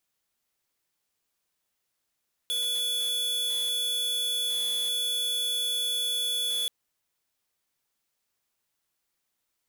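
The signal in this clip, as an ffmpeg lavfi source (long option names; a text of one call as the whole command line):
ffmpeg -f lavfi -i "aevalsrc='0.0376*(2*lt(mod(3430*t,1),0.5)-1)':duration=4.18:sample_rate=44100" out.wav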